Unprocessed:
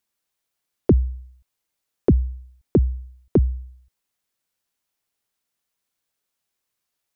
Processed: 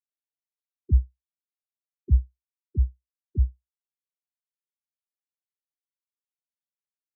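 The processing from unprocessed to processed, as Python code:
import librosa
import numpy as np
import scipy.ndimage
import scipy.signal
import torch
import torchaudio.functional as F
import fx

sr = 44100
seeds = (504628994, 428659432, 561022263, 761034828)

y = fx.rider(x, sr, range_db=5, speed_s=2.0)
y = fx.spectral_expand(y, sr, expansion=4.0)
y = y * 10.0 ** (-2.5 / 20.0)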